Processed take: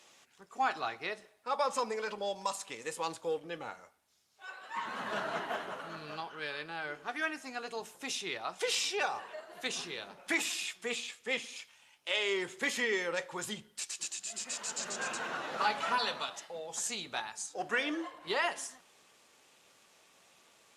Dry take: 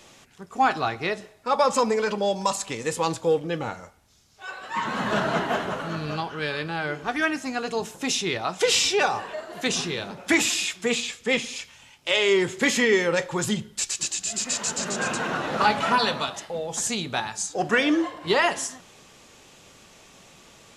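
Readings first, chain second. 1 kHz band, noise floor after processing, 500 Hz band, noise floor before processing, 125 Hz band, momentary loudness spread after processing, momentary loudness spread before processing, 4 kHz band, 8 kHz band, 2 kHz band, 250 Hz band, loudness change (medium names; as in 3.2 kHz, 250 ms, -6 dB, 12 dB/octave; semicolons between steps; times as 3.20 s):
-10.0 dB, -65 dBFS, -12.5 dB, -52 dBFS, -20.5 dB, 11 LU, 10 LU, -10.0 dB, -11.0 dB, -9.5 dB, -16.0 dB, -11.0 dB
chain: high-pass 600 Hz 6 dB/octave; trim -8.5 dB; Opus 48 kbps 48 kHz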